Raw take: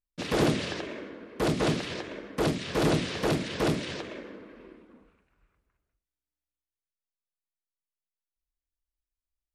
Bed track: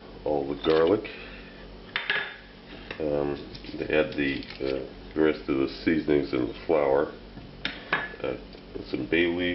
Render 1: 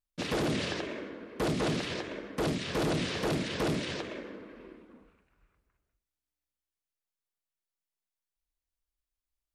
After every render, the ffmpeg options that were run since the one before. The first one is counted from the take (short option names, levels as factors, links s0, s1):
-af "alimiter=limit=0.0794:level=0:latency=1:release=10"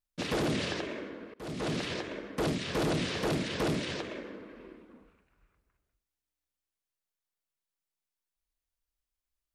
-filter_complex "[0:a]asplit=2[s0][s1];[s0]atrim=end=1.34,asetpts=PTS-STARTPTS,afade=t=out:st=1.336:d=0.004:c=hsin:silence=0.0668344[s2];[s1]atrim=start=1.34,asetpts=PTS-STARTPTS,afade=t=in:d=0.49:silence=0.0668344[s3];[s2][s3]concat=n=2:v=0:a=1"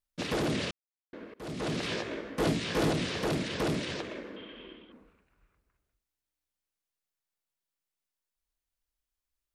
-filter_complex "[0:a]asettb=1/sr,asplit=3[s0][s1][s2];[s0]atrim=end=1.814[s3];[s1]atrim=start=1.81:end=2.92,asetpts=PTS-STARTPTS,afade=t=in:d=0.004:c=qsin,afade=t=out:st=1.106:d=0.004:c=qsin,asplit=2[s4][s5];[s5]adelay=18,volume=0.794[s6];[s4][s6]amix=inputs=2:normalize=0,atrim=end_sample=48951[s7];[s2]atrim=start=2.916[s8];[s3][s7]acrossfade=d=0.004:c1=hsin:c2=qsin[s9];[s9][s8]acrossfade=d=0.004:c1=qsin:c2=hsin,asettb=1/sr,asplit=3[s10][s11][s12];[s10]atrim=end=4.364[s13];[s11]atrim=start=4.36:end=4.92,asetpts=PTS-STARTPTS,afade=t=in:d=0.004:c=qsin,afade=t=out:st=0.556:d=0.004:c=qsin,lowpass=f=3200:t=q:w=16[s14];[s12]atrim=start=4.916[s15];[s13][s14]acrossfade=d=0.004:c1=hsin:c2=qsin[s16];[s16][s15]acrossfade=d=0.004:c1=qsin:c2=hsin,asplit=3[s17][s18][s19];[s17]atrim=end=0.71,asetpts=PTS-STARTPTS,afade=t=out:st=0.706:d=0.004:c=hsin[s20];[s18]atrim=start=0.71:end=1.13,asetpts=PTS-STARTPTS,volume=0[s21];[s19]atrim=start=1.13,asetpts=PTS-STARTPTS,afade=t=in:d=0.004:c=hsin[s22];[s20][s21][s22]concat=n=3:v=0:a=1"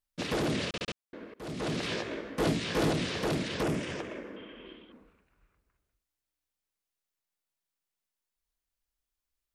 -filter_complex "[0:a]asettb=1/sr,asplit=3[s0][s1][s2];[s0]atrim=end=3.634[s3];[s1]atrim=start=3.63:end=4.66,asetpts=PTS-STARTPTS,afade=t=in:d=0.004:c=qsin,afade=t=out:st=1.026:d=0.004:c=qsin,equalizer=f=4100:t=o:w=0.49:g=-12[s4];[s2]atrim=start=4.656[s5];[s3][s4]acrossfade=d=0.004:c1=hsin:c2=qsin[s6];[s6][s5]acrossfade=d=0.004:c1=qsin:c2=hsin,asplit=5[s7][s8][s9][s10][s11];[s7]atrim=end=0.742[s12];[s8]atrim=start=0.668:end=0.742[s13];[s9]atrim=start=0.668:end=0.742[s14];[s10]atrim=start=0.668:end=0.742[s15];[s11]atrim=start=0.948[s16];[s12][s13]acrossfade=d=0.004:c1=hsin:c2=hsin[s17];[s17][s14]acrossfade=d=0.004:c1=hsin:c2=hsin[s18];[s18][s15]acrossfade=d=0.004:c1=hsin:c2=hsin[s19];[s19][s16]acrossfade=d=0.004:c1=hsin:c2=hsin"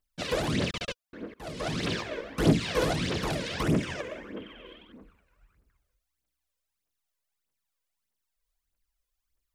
-af "aphaser=in_gain=1:out_gain=1:delay=2.1:decay=0.65:speed=1.6:type=triangular"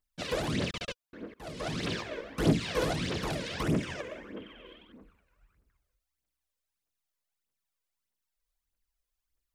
-af "volume=0.708"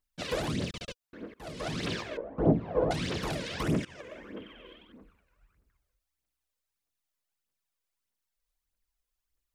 -filter_complex "[0:a]asettb=1/sr,asplit=3[s0][s1][s2];[s0]atrim=end=0.524[s3];[s1]atrim=start=0.52:end=1.02,asetpts=PTS-STARTPTS,afade=t=in:d=0.004:c=qsin,afade=t=out:st=0.496:d=0.004:c=qsin,equalizer=f=1400:w=0.43:g=-6.5[s4];[s2]atrim=start=1.016[s5];[s3][s4]acrossfade=d=0.004:c1=hsin:c2=qsin[s6];[s6][s5]acrossfade=d=0.004:c1=qsin:c2=hsin,asettb=1/sr,asplit=3[s7][s8][s9];[s7]atrim=end=2.174[s10];[s8]atrim=start=2.17:end=2.91,asetpts=PTS-STARTPTS,afade=t=in:d=0.004:c=qsin,afade=t=out:st=0.736:d=0.004:c=qsin,lowpass=f=730:t=q:w=1.9[s11];[s9]atrim=start=2.906[s12];[s10][s11]acrossfade=d=0.004:c1=hsin:c2=qsin[s13];[s13][s12]acrossfade=d=0.004:c1=qsin:c2=hsin,asplit=2[s14][s15];[s14]atrim=end=3.85,asetpts=PTS-STARTPTS,afade=t=out:st=3.846:d=0.004:c=hsin:silence=0.141254[s16];[s15]atrim=start=3.85,asetpts=PTS-STARTPTS,afade=t=in:d=0.43:silence=0.141254[s17];[s16][s17]concat=n=2:v=0:a=1"